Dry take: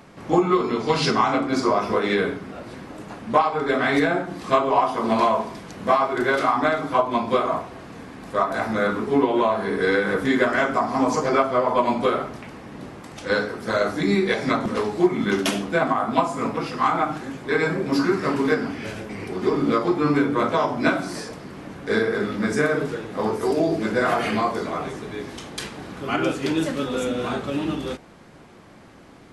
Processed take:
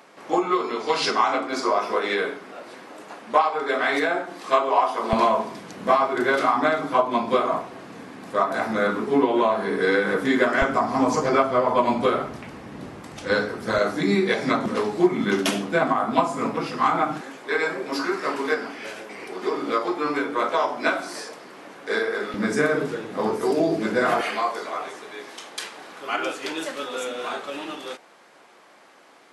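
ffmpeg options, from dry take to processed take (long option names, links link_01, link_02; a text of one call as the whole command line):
ffmpeg -i in.wav -af "asetnsamples=nb_out_samples=441:pad=0,asendcmd='5.13 highpass f 170;10.62 highpass f 46;13.78 highpass f 140;17.21 highpass f 450;22.34 highpass f 160;24.21 highpass f 560',highpass=420" out.wav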